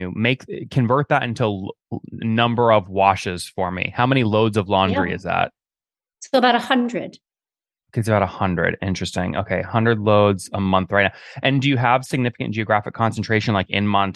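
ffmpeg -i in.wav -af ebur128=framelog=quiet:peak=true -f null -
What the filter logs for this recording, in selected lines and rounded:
Integrated loudness:
  I:         -19.7 LUFS
  Threshold: -29.9 LUFS
Loudness range:
  LRA:         3.2 LU
  Threshold: -40.1 LUFS
  LRA low:   -22.1 LUFS
  LRA high:  -18.9 LUFS
True peak:
  Peak:       -1.3 dBFS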